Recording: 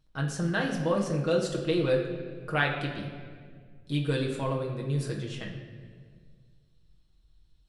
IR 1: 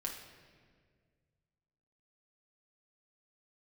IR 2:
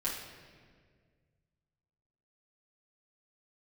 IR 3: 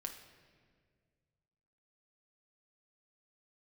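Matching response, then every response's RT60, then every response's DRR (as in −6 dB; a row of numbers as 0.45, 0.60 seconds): 1; 1.8, 1.8, 1.9 seconds; −1.5, −7.5, 2.5 decibels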